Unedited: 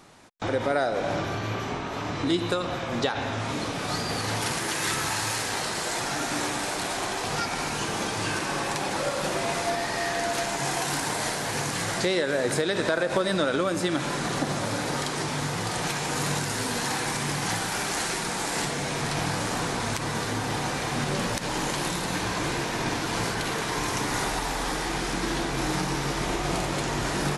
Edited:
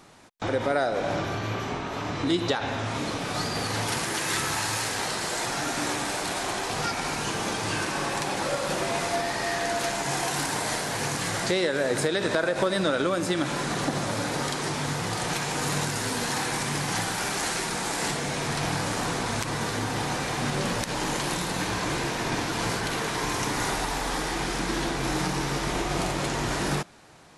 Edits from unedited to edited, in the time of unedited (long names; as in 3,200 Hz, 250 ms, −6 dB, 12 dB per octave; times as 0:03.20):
0:02.48–0:03.02: remove